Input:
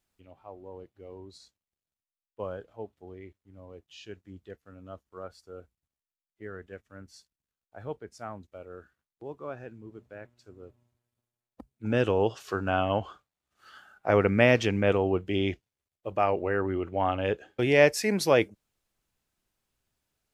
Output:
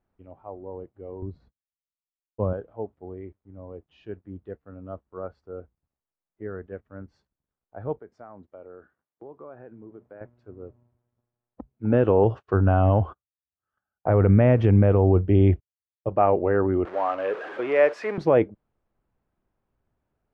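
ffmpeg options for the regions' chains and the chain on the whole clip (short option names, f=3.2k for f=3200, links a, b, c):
-filter_complex "[0:a]asettb=1/sr,asplit=3[a][b][c];[a]atrim=end=1.224[d];[b]atrim=start=1.22:end=2.53,asetpts=PTS-STARTPTS,afade=t=in:d=0.004:c=qsin,afade=t=out:st=1.306:d=0.004:c=qsin,agate=range=-33dB:threshold=-59dB:ratio=3:release=100:detection=peak,bass=f=250:g=12,treble=f=4k:g=-12[e];[c]atrim=start=2.526[f];[d][e]acrossfade=d=0.004:c1=hsin:c2=qsin[g];[g][f]acrossfade=d=0.004:c1=qsin:c2=hsin,asettb=1/sr,asplit=3[h][i][j];[h]atrim=end=7.994[k];[i]atrim=start=7.99:end=10.21,asetpts=PTS-STARTPTS,afade=t=in:d=0.004:c=qsin,afade=t=out:st=2.216:d=0.004:c=qsin,highpass=f=290:p=1,bandreject=f=2.6k:w=20,acompressor=threshold=-46dB:ratio=4:attack=3.2:release=140:knee=1:detection=peak[l];[j]atrim=start=10.206[m];[k][l]acrossfade=d=0.004:c1=hsin:c2=qsin[n];[n][m]acrossfade=d=0.004:c1=qsin:c2=hsin,asettb=1/sr,asplit=3[o][p][q];[o]atrim=end=12.244[r];[p]atrim=start=12.24:end=16.09,asetpts=PTS-STARTPTS,afade=t=in:d=0.004:c=qsin,afade=t=out:st=3.846:d=0.004:c=qsin,equalizer=f=78:w=0.8:g=12.5,agate=range=-35dB:threshold=-46dB:ratio=16:release=100:detection=peak[s];[q]atrim=start=16.086[t];[r][s]acrossfade=d=0.004:c1=hsin:c2=qsin[u];[u][t]acrossfade=d=0.004:c1=qsin:c2=hsin,asettb=1/sr,asplit=3[v][w][x];[v]atrim=end=16.854[y];[w]atrim=start=16.85:end=18.18,asetpts=PTS-STARTPTS,afade=t=in:d=0.004:c=qsin,afade=t=out:st=1.326:d=0.004:c=qsin,aeval=exprs='val(0)+0.5*0.0355*sgn(val(0))':c=same,highpass=650,equalizer=f=820:w=3.3:g=-7.5[z];[x]atrim=start=18.176[aa];[y][z]acrossfade=d=0.004:c1=hsin:c2=qsin[ab];[ab][aa]acrossfade=d=0.004:c1=qsin:c2=hsin,lowpass=1.1k,alimiter=level_in=14dB:limit=-1dB:release=50:level=0:latency=1,volume=-7dB"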